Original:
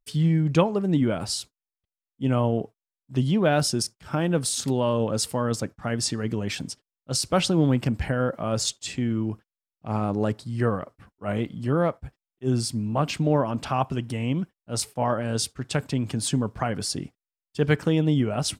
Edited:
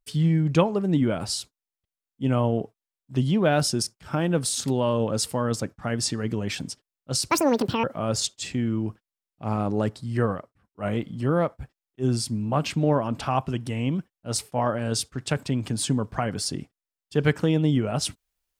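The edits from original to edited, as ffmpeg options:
-filter_complex "[0:a]asplit=4[s0][s1][s2][s3];[s0]atrim=end=7.304[s4];[s1]atrim=start=7.3:end=8.27,asetpts=PTS-STARTPTS,asetrate=79821,aresample=44100[s5];[s2]atrim=start=8.266:end=11.02,asetpts=PTS-STARTPTS,afade=t=out:st=2.504:d=0.25:silence=0.112202[s6];[s3]atrim=start=11.02,asetpts=PTS-STARTPTS,afade=t=in:d=0.25:silence=0.112202[s7];[s4][s5]acrossfade=d=0.004:c1=hsin:c2=hsin[s8];[s6][s7]concat=n=2:v=0:a=1[s9];[s8][s9]acrossfade=d=0.004:c1=hsin:c2=hsin"

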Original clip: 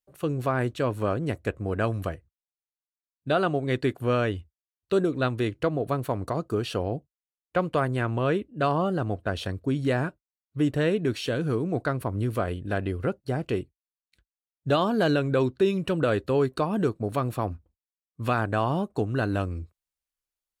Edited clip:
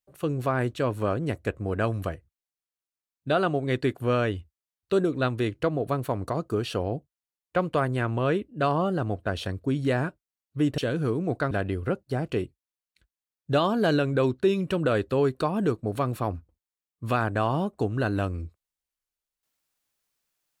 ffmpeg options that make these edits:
-filter_complex "[0:a]asplit=3[s0][s1][s2];[s0]atrim=end=10.782[s3];[s1]atrim=start=11.228:end=11.962[s4];[s2]atrim=start=12.678[s5];[s3][s4]acrossfade=d=0.004:c1=hsin:c2=hsin[s6];[s6][s5]acrossfade=d=0.004:c1=hsin:c2=hsin"

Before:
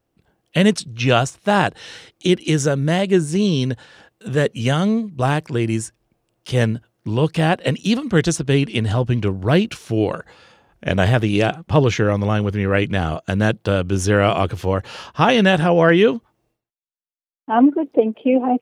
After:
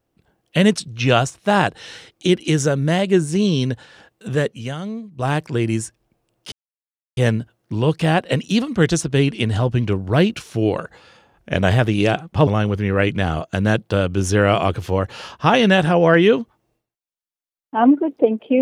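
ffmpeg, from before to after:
-filter_complex "[0:a]asplit=5[s0][s1][s2][s3][s4];[s0]atrim=end=4.81,asetpts=PTS-STARTPTS,afade=t=out:st=4.34:d=0.47:c=qua:silence=0.298538[s5];[s1]atrim=start=4.81:end=4.9,asetpts=PTS-STARTPTS,volume=0.299[s6];[s2]atrim=start=4.9:end=6.52,asetpts=PTS-STARTPTS,afade=t=in:d=0.47:c=qua:silence=0.298538,afade=t=out:st=1.616:d=0.004:c=hsin,apad=pad_dur=0.65[s7];[s3]atrim=start=6.52:end=11.822,asetpts=PTS-STARTPTS,afade=t=in:d=0.004:c=hsin[s8];[s4]atrim=start=12.218[s9];[s5][s6][s7][s8]concat=n=4:v=0:a=1[s10];[s10][s9]acrossfade=d=0.004:c1=hsin:c2=hsin"

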